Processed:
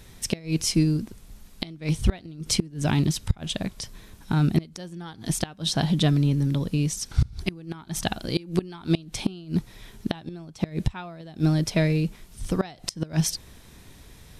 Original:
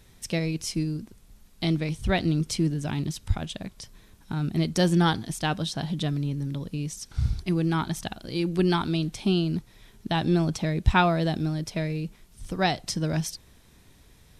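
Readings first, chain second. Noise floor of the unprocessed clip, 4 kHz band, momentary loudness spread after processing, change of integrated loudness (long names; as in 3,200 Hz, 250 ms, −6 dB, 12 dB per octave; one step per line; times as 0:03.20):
−56 dBFS, +1.5 dB, 14 LU, +0.5 dB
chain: gate with flip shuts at −16 dBFS, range −24 dB
level +7 dB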